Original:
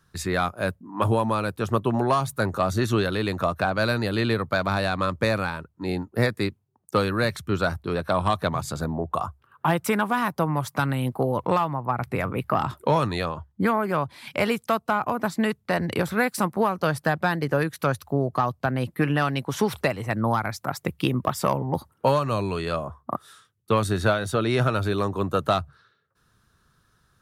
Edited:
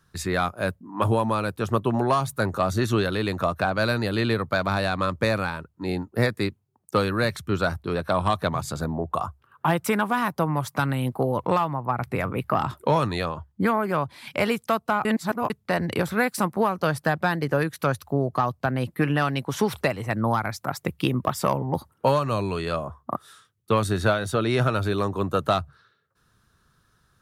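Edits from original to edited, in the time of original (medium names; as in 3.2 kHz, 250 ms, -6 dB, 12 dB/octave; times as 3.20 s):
15.05–15.50 s: reverse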